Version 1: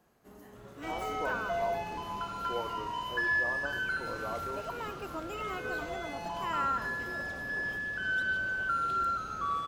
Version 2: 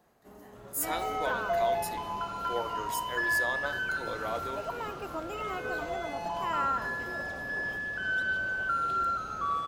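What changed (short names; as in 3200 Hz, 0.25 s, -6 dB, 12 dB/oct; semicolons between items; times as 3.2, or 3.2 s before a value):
speech: remove steep low-pass 1200 Hz 96 dB/oct; master: add bell 710 Hz +4.5 dB 1.2 oct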